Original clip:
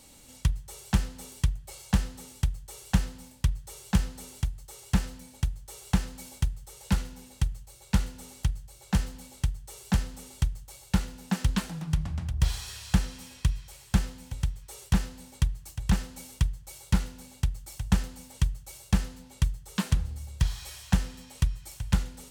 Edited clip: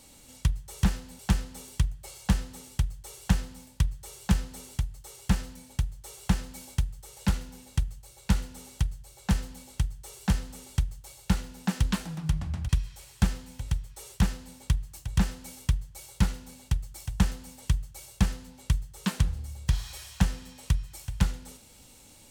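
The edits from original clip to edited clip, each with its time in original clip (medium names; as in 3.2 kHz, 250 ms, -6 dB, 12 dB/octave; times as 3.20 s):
12.33–13.41 s: delete
14.92–15.28 s: copy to 0.83 s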